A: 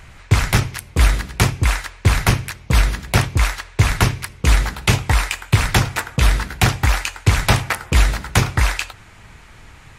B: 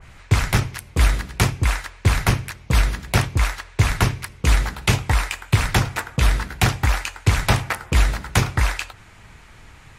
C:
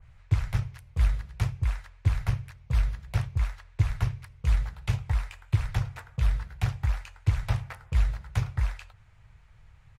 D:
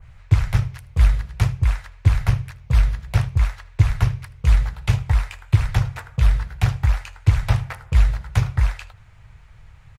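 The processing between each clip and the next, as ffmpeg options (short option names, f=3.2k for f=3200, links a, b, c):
-af "adynamicequalizer=threshold=0.0282:dfrequency=2100:dqfactor=0.7:tfrequency=2100:tqfactor=0.7:attack=5:release=100:ratio=0.375:range=2:mode=cutabove:tftype=highshelf,volume=-2.5dB"
-af "firequalizer=gain_entry='entry(120,0);entry(260,-21);entry(500,-10);entry(8300,-16)':delay=0.05:min_phase=1,aeval=exprs='0.501*(cos(1*acos(clip(val(0)/0.501,-1,1)))-cos(1*PI/2))+0.0282*(cos(3*acos(clip(val(0)/0.501,-1,1)))-cos(3*PI/2))':c=same,volume=-5.5dB"
-af "aecho=1:1:78:0.0841,volume=8.5dB"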